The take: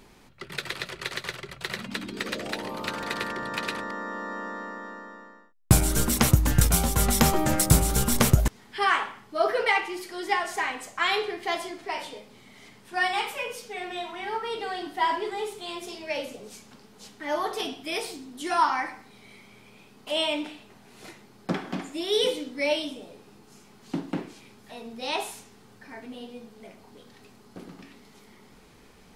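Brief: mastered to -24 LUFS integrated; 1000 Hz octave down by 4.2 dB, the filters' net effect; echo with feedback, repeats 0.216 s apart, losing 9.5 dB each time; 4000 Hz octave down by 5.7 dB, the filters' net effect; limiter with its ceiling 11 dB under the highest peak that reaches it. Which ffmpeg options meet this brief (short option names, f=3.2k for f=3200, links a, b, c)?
-af "equalizer=f=1k:t=o:g=-5,equalizer=f=4k:t=o:g=-7.5,alimiter=limit=-17dB:level=0:latency=1,aecho=1:1:216|432|648|864:0.335|0.111|0.0365|0.012,volume=7dB"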